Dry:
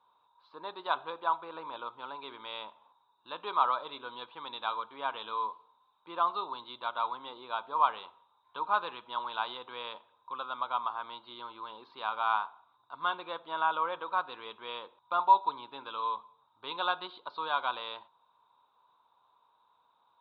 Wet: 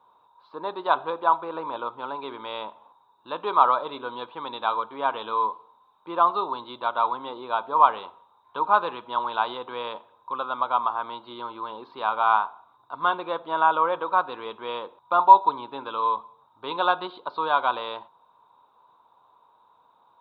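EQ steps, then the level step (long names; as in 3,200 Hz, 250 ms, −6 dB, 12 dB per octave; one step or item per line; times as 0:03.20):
spectral tilt +1.5 dB per octave
tilt shelving filter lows +9 dB, about 1,300 Hz
+7.0 dB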